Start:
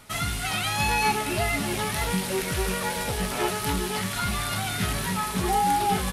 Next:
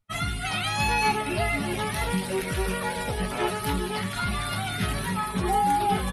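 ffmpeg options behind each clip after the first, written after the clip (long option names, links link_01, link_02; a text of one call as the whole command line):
ffmpeg -i in.wav -af "afftdn=noise_reduction=36:noise_floor=-37" out.wav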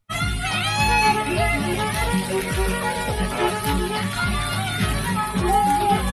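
ffmpeg -i in.wav -filter_complex "[0:a]asplit=2[link_01][link_02];[link_02]adelay=20,volume=-14dB[link_03];[link_01][link_03]amix=inputs=2:normalize=0,volume=5dB" out.wav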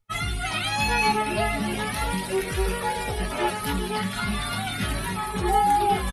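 ffmpeg -i in.wav -af "flanger=delay=2.3:depth=2.4:regen=38:speed=0.36:shape=sinusoidal" out.wav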